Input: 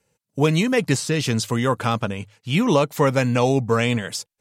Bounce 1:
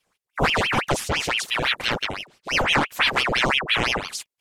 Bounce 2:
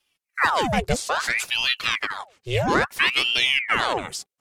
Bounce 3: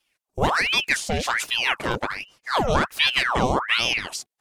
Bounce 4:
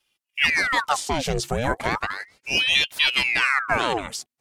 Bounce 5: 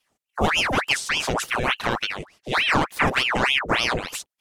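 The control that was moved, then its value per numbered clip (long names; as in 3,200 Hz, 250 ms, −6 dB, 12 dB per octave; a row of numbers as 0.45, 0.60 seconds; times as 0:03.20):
ring modulator whose carrier an LFO sweeps, at: 5.9, 0.6, 1.3, 0.35, 3.4 Hertz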